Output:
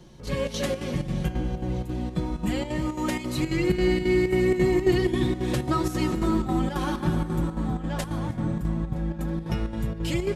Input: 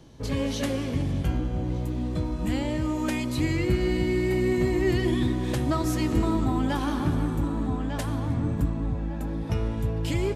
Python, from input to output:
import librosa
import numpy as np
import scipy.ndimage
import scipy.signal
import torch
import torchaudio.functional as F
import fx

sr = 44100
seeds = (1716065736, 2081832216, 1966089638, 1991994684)

y = x + 0.69 * np.pad(x, (int(5.5 * sr / 1000.0), 0))[:len(x)]
y = fx.echo_feedback(y, sr, ms=322, feedback_pct=60, wet_db=-18.5)
y = fx.chopper(y, sr, hz=3.7, depth_pct=60, duty_pct=75)